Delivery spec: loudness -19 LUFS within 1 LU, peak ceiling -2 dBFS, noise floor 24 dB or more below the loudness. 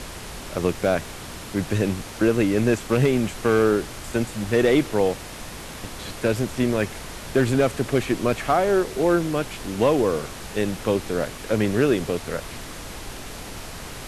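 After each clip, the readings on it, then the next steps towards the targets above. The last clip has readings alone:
clipped 0.5%; flat tops at -10.0 dBFS; noise floor -37 dBFS; noise floor target -47 dBFS; loudness -23.0 LUFS; peak -10.0 dBFS; loudness target -19.0 LUFS
-> clip repair -10 dBFS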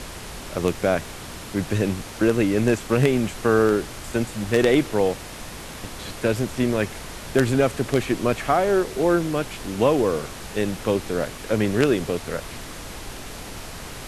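clipped 0.0%; noise floor -37 dBFS; noise floor target -47 dBFS
-> noise print and reduce 10 dB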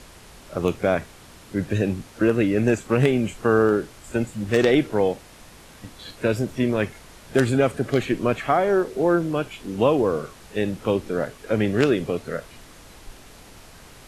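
noise floor -47 dBFS; loudness -23.0 LUFS; peak -1.5 dBFS; loudness target -19.0 LUFS
-> gain +4 dB; limiter -2 dBFS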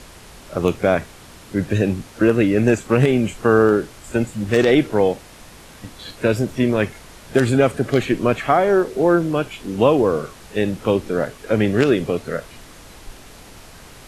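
loudness -19.0 LUFS; peak -2.0 dBFS; noise floor -43 dBFS

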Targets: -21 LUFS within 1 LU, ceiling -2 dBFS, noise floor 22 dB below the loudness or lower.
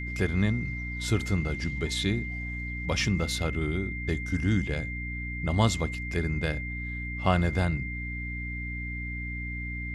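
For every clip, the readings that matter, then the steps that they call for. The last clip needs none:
hum 60 Hz; harmonics up to 300 Hz; hum level -33 dBFS; steady tone 2100 Hz; tone level -36 dBFS; loudness -29.5 LUFS; peak -8.5 dBFS; loudness target -21.0 LUFS
-> notches 60/120/180/240/300 Hz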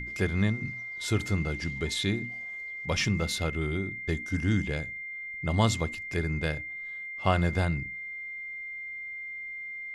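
hum none; steady tone 2100 Hz; tone level -36 dBFS
-> notch 2100 Hz, Q 30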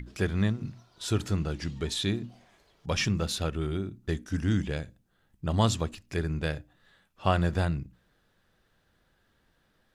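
steady tone none; loudness -30.5 LUFS; peak -8.5 dBFS; loudness target -21.0 LUFS
-> gain +9.5 dB; limiter -2 dBFS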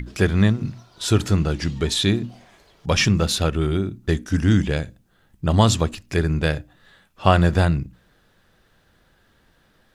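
loudness -21.0 LUFS; peak -2.0 dBFS; noise floor -61 dBFS

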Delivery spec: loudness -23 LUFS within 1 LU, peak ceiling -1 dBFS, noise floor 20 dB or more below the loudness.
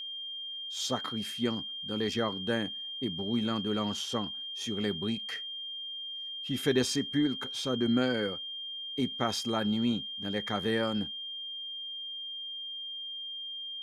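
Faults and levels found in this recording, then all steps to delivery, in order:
steady tone 3200 Hz; tone level -37 dBFS; loudness -32.5 LUFS; peak -13.0 dBFS; loudness target -23.0 LUFS
-> notch 3200 Hz, Q 30; gain +9.5 dB

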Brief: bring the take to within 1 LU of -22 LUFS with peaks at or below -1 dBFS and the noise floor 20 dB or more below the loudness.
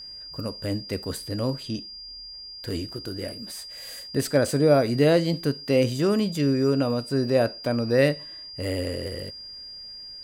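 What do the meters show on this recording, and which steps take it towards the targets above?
steady tone 4800 Hz; tone level -38 dBFS; loudness -25.0 LUFS; peak -7.5 dBFS; loudness target -22.0 LUFS
-> notch 4800 Hz, Q 30; gain +3 dB

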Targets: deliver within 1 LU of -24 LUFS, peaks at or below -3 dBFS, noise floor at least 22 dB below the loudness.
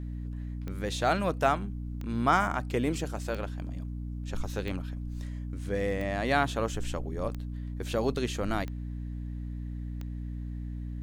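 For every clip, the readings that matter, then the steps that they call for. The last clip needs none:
clicks 8; hum 60 Hz; harmonics up to 300 Hz; hum level -34 dBFS; loudness -32.5 LUFS; peak -11.0 dBFS; loudness target -24.0 LUFS
-> de-click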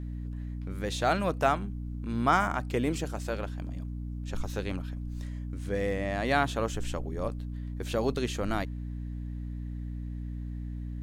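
clicks 0; hum 60 Hz; harmonics up to 300 Hz; hum level -34 dBFS
-> notches 60/120/180/240/300 Hz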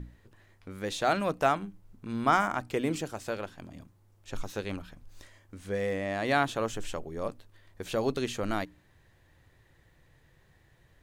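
hum none; loudness -31.5 LUFS; peak -11.5 dBFS; loudness target -24.0 LUFS
-> gain +7.5 dB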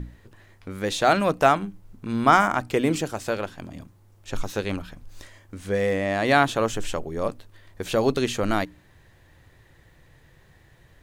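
loudness -24.0 LUFS; peak -4.0 dBFS; noise floor -56 dBFS

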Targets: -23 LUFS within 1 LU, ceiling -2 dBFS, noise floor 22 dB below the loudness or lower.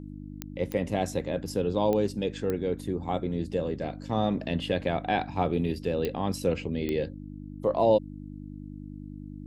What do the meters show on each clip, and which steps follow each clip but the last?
clicks 6; hum 50 Hz; harmonics up to 300 Hz; hum level -39 dBFS; loudness -29.0 LUFS; peak -10.5 dBFS; loudness target -23.0 LUFS
-> de-click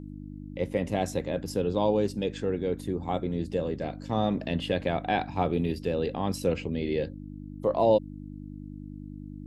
clicks 0; hum 50 Hz; harmonics up to 300 Hz; hum level -39 dBFS
-> de-hum 50 Hz, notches 6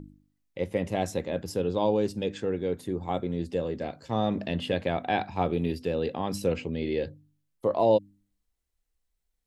hum none; loudness -29.5 LUFS; peak -11.5 dBFS; loudness target -23.0 LUFS
-> gain +6.5 dB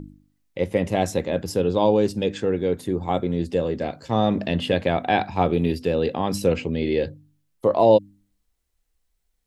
loudness -23.0 LUFS; peak -5.0 dBFS; noise floor -72 dBFS

